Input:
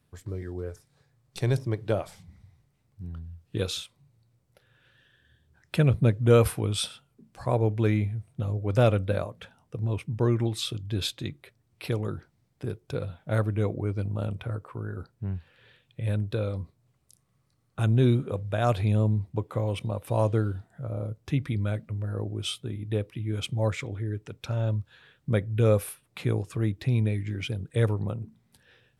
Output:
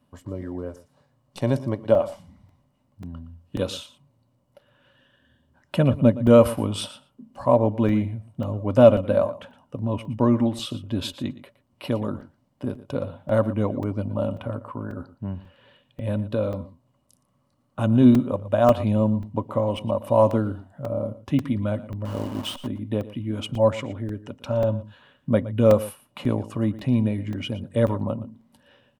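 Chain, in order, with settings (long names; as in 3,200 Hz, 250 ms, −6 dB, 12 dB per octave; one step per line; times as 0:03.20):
0:22.05–0:22.67: hold until the input has moved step −34 dBFS
parametric band 1,000 Hz +12.5 dB 0.61 octaves
in parallel at −12 dB: soft clipping −14 dBFS, distortion −16 dB
on the sum: hollow resonant body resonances 250/570/2,900 Hz, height 16 dB, ringing for 50 ms
on a send: single-tap delay 117 ms −16.5 dB
on the sum: regular buffer underruns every 0.54 s, samples 128, zero, from 0:00.87
level −4.5 dB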